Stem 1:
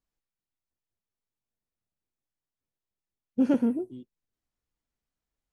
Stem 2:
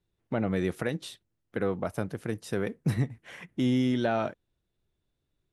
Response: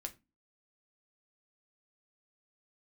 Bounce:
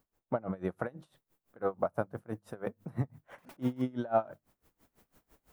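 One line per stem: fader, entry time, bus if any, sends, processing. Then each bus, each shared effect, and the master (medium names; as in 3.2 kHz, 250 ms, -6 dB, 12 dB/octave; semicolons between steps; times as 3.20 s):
0.99 s -18.5 dB -> 1.23 s -7 dB, 0.00 s, no send, integer overflow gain 27.5 dB; bass shelf 120 Hz -12 dB; level flattener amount 70%; auto duck -7 dB, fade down 0.30 s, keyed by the second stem
-4.0 dB, 0.00 s, send -9.5 dB, high-order bell 910 Hz +9.5 dB; hum notches 50/100/150/200 Hz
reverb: on, RT60 0.25 s, pre-delay 5 ms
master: peaking EQ 4.7 kHz -11.5 dB 2.9 oct; logarithmic tremolo 6 Hz, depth 24 dB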